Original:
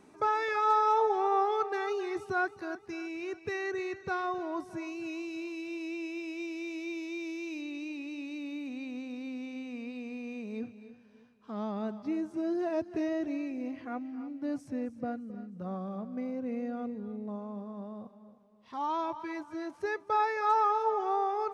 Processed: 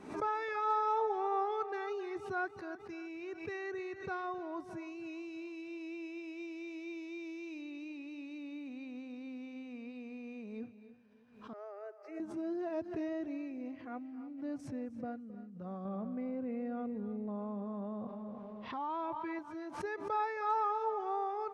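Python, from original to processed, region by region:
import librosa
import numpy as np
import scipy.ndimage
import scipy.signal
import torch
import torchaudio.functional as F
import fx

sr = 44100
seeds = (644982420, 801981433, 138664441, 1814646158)

y = fx.chain(x, sr, fx.steep_highpass(hz=320.0, slope=96),
    fx.fixed_phaser(hz=960.0, stages=6), at=(11.53, 12.2))
y = fx.chain(y, sr, fx.lowpass(hz=3400.0, slope=12),
    fx.env_flatten(amount_pct=70), at=(15.85, 19.39))
y = fx.high_shelf(y, sr, hz=5700.0, db=-11.0)
y = fx.pre_swell(y, sr, db_per_s=95.0)
y = F.gain(torch.from_numpy(y), -6.0).numpy()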